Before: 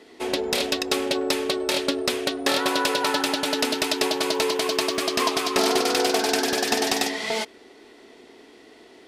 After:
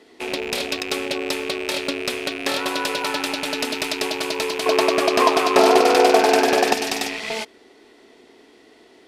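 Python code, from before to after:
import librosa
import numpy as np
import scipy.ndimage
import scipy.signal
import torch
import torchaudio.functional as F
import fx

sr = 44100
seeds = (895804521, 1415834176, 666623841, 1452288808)

y = fx.rattle_buzz(x, sr, strikes_db=-43.0, level_db=-17.0)
y = fx.peak_eq(y, sr, hz=650.0, db=12.0, octaves=2.5, at=(4.66, 6.73))
y = y * librosa.db_to_amplitude(-1.5)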